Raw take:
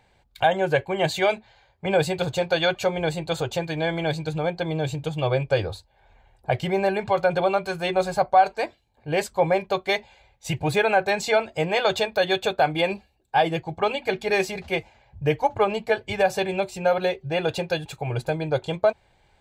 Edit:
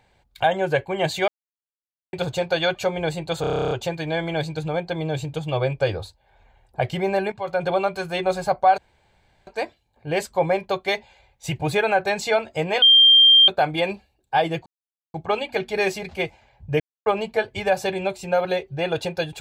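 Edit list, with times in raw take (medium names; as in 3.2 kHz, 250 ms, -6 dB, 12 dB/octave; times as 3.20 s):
1.28–2.13 s: mute
3.41 s: stutter 0.03 s, 11 plays
7.02–7.40 s: fade in, from -14.5 dB
8.48 s: insert room tone 0.69 s
11.83–12.49 s: bleep 3.18 kHz -9 dBFS
13.67 s: insert silence 0.48 s
15.33–15.59 s: mute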